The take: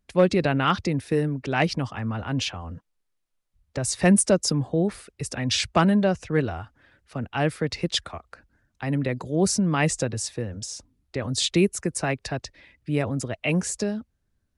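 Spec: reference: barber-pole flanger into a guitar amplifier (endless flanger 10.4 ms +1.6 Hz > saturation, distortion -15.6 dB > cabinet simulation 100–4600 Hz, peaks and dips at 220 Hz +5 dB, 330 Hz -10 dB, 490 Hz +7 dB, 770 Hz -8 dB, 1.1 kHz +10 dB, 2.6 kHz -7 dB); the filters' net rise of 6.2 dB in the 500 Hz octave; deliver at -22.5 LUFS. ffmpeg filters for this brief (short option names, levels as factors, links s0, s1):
-filter_complex "[0:a]equalizer=f=500:t=o:g=5,asplit=2[s0][s1];[s1]adelay=10.4,afreqshift=1.6[s2];[s0][s2]amix=inputs=2:normalize=1,asoftclip=threshold=0.188,highpass=100,equalizer=f=220:t=q:w=4:g=5,equalizer=f=330:t=q:w=4:g=-10,equalizer=f=490:t=q:w=4:g=7,equalizer=f=770:t=q:w=4:g=-8,equalizer=f=1100:t=q:w=4:g=10,equalizer=f=2600:t=q:w=4:g=-7,lowpass=f=4600:w=0.5412,lowpass=f=4600:w=1.3066,volume=1.68"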